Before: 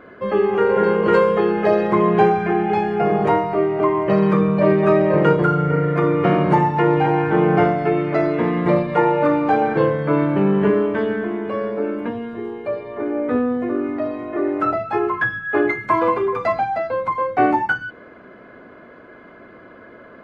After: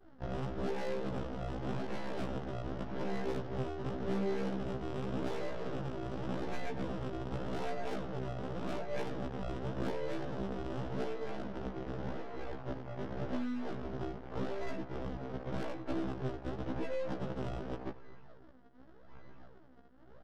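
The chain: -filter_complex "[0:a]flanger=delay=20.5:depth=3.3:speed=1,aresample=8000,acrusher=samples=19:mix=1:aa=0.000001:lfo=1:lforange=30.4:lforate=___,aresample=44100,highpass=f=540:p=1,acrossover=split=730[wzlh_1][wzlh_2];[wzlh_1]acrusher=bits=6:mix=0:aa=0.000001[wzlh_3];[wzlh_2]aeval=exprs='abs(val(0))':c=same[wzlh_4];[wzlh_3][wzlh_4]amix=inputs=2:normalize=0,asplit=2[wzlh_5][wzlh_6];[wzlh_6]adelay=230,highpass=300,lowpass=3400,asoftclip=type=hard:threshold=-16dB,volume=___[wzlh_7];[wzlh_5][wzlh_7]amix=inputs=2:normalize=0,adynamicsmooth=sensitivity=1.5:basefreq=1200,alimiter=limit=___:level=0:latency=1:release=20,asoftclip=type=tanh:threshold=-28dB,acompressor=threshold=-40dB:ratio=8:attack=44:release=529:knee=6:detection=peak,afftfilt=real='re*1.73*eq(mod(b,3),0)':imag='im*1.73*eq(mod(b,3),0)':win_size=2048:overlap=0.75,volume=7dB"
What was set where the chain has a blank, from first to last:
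0.87, -23dB, -11.5dB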